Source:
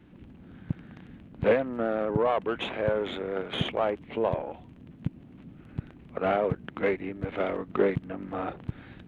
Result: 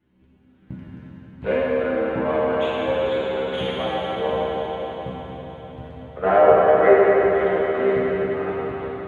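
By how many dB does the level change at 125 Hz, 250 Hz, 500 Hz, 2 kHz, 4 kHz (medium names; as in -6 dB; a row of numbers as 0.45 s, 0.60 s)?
+1.0 dB, +5.0 dB, +10.0 dB, +8.5 dB, +4.5 dB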